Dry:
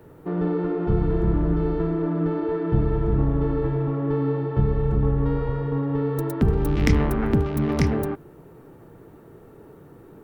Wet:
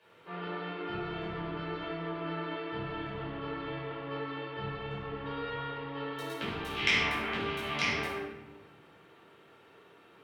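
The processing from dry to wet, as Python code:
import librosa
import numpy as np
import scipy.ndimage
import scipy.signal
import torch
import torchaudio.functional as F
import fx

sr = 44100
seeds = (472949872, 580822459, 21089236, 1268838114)

y = fx.bandpass_q(x, sr, hz=3000.0, q=2.4)
y = fx.room_shoebox(y, sr, seeds[0], volume_m3=530.0, walls='mixed', distance_m=5.3)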